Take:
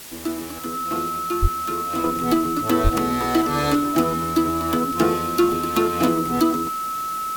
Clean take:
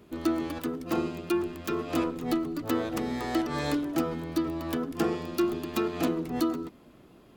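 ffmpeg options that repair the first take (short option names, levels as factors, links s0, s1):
-filter_complex "[0:a]bandreject=f=1300:w=30,asplit=3[s0][s1][s2];[s0]afade=t=out:st=1.41:d=0.02[s3];[s1]highpass=f=140:w=0.5412,highpass=f=140:w=1.3066,afade=t=in:st=1.41:d=0.02,afade=t=out:st=1.53:d=0.02[s4];[s2]afade=t=in:st=1.53:d=0.02[s5];[s3][s4][s5]amix=inputs=3:normalize=0,asplit=3[s6][s7][s8];[s6]afade=t=out:st=2.83:d=0.02[s9];[s7]highpass=f=140:w=0.5412,highpass=f=140:w=1.3066,afade=t=in:st=2.83:d=0.02,afade=t=out:st=2.95:d=0.02[s10];[s8]afade=t=in:st=2.95:d=0.02[s11];[s9][s10][s11]amix=inputs=3:normalize=0,afwtdn=0.013,asetnsamples=n=441:p=0,asendcmd='2.04 volume volume -8dB',volume=1"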